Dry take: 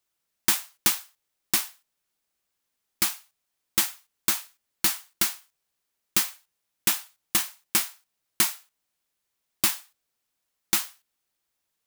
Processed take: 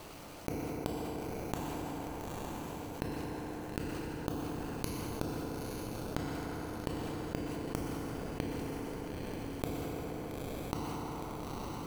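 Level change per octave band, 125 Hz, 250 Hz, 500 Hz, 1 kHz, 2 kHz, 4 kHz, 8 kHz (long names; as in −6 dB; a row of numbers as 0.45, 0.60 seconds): +9.5, +5.0, +9.0, −2.0, −12.5, −18.0, −22.0 decibels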